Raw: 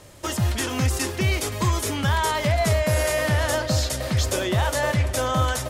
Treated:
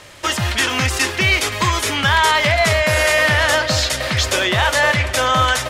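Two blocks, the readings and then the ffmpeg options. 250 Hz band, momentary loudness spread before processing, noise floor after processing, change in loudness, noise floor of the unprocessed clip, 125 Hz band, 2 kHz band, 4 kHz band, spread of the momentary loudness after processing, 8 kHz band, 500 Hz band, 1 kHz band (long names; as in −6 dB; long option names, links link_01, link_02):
+1.5 dB, 3 LU, −27 dBFS, +7.5 dB, −32 dBFS, +0.5 dB, +13.0 dB, +11.5 dB, 4 LU, +5.5 dB, +5.0 dB, +8.5 dB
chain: -af "equalizer=frequency=2300:width=0.38:gain=13.5"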